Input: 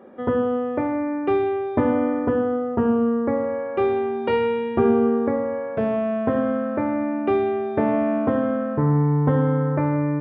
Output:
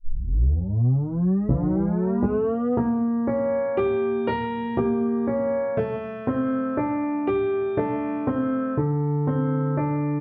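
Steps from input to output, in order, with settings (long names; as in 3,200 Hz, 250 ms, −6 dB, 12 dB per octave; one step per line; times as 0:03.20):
turntable start at the beginning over 2.73 s
low-shelf EQ 260 Hz +7.5 dB
downward compressor 5 to 1, threshold −20 dBFS, peak gain reduction 10.5 dB
double-tracking delay 16 ms −2 dB
level −1 dB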